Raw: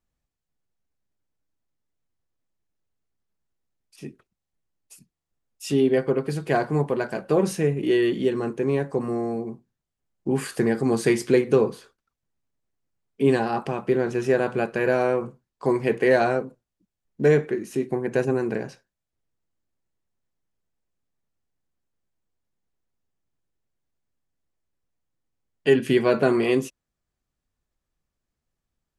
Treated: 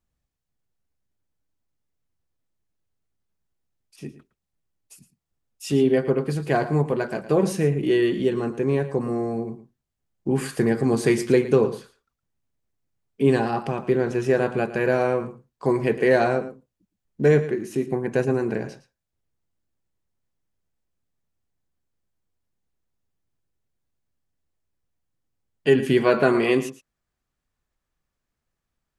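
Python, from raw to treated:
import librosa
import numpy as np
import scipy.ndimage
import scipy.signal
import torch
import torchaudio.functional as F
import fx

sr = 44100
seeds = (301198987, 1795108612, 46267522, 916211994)

y = fx.peak_eq(x, sr, hz=fx.steps((0.0, 80.0), (26.01, 1500.0)), db=4.5, octaves=2.0)
y = y + 10.0 ** (-14.5 / 20.0) * np.pad(y, (int(113 * sr / 1000.0), 0))[:len(y)]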